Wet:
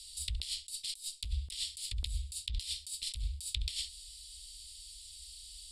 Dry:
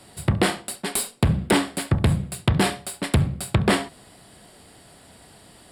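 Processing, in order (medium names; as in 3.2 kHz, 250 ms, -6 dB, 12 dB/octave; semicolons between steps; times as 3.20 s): inverse Chebyshev band-stop 120–1600 Hz, stop band 50 dB; compressor with a negative ratio -40 dBFS, ratio -1; distance through air 56 m; trim +4.5 dB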